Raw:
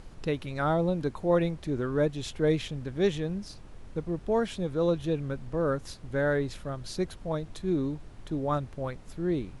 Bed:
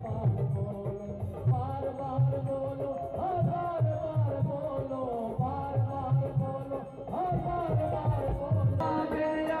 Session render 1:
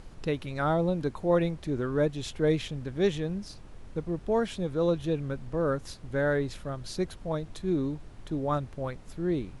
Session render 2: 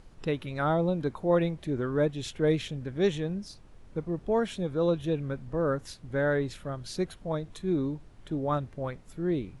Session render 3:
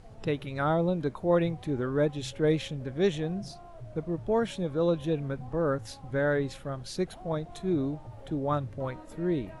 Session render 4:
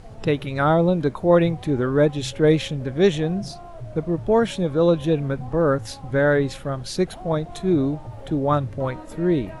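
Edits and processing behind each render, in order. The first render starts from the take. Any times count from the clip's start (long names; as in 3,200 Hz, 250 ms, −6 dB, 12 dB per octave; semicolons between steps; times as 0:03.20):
no processing that can be heard
noise reduction from a noise print 6 dB
mix in bed −17.5 dB
level +8.5 dB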